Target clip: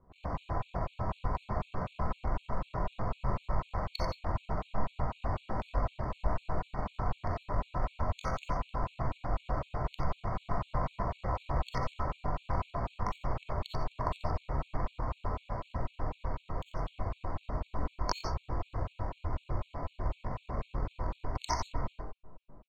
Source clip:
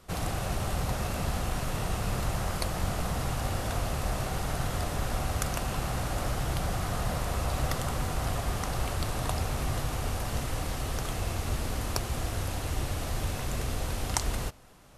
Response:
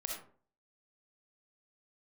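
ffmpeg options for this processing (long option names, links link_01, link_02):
-filter_complex "[0:a]lowpass=frequency=5300:width_type=q:width=2.5,atempo=0.66,asplit=2[link_01][link_02];[link_02]aeval=exprs='sgn(val(0))*max(abs(val(0))-0.0282,0)':channel_layout=same,volume=-5.5dB[link_03];[link_01][link_03]amix=inputs=2:normalize=0,adynamicsmooth=sensitivity=2.5:basefreq=660,equalizer=frequency=1000:width=6:gain=13,areverse,acompressor=mode=upward:threshold=-44dB:ratio=2.5,areverse,aemphasis=mode=reproduction:type=50fm,aecho=1:1:90:0.473[link_04];[1:a]atrim=start_sample=2205[link_05];[link_04][link_05]afir=irnorm=-1:irlink=0,afftfilt=real='re*gt(sin(2*PI*4*pts/sr)*(1-2*mod(floor(b*sr/1024/2200),2)),0)':imag='im*gt(sin(2*PI*4*pts/sr)*(1-2*mod(floor(b*sr/1024/2200),2)),0)':win_size=1024:overlap=0.75,volume=-4dB"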